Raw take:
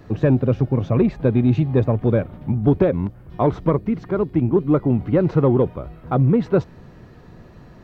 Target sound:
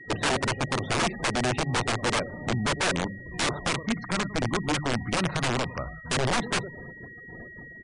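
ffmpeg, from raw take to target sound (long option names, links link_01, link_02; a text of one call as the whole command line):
ffmpeg -i in.wav -filter_complex "[0:a]asettb=1/sr,asplit=3[link_01][link_02][link_03];[link_01]atrim=end=3.754[link_04];[link_02]atrim=start=3.75:end=6.11,asetpts=PTS-STARTPTS,afade=type=in:duration=0.004:curve=qsin,afade=type=out:start_time=2.356:duration=0.004:curve=qsin,equalizer=frequency=410:width_type=o:width=1:gain=-14.5[link_05];[link_03]atrim=start=6.106[link_06];[link_04][link_05]acrossfade=duration=0.004:curve1=hsin:curve2=qsin[link_07];[link_07][link_06]acrossfade=duration=0.004:curve1=qsin:curve2=hsin,agate=range=-7dB:threshold=-42dB:ratio=16:detection=peak,acompressor=threshold=-25dB:ratio=3,lowshelf=frequency=220:gain=-10.5,bandreject=frequency=50:width_type=h:width=6,bandreject=frequency=100:width_type=h:width=6,bandreject=frequency=150:width_type=h:width=6,bandreject=frequency=200:width_type=h:width=6,aecho=1:1:103|206|309:0.112|0.0359|0.0115,aeval=exprs='val(0)+0.00316*sin(2*PI*1900*n/s)':channel_layout=same,aeval=exprs='(mod(21.1*val(0)+1,2)-1)/21.1':channel_layout=same,aresample=22050,aresample=44100,afftfilt=real='re*gte(hypot(re,im),0.00562)':imag='im*gte(hypot(re,im),0.00562)':win_size=1024:overlap=0.75,volume=7dB" out.wav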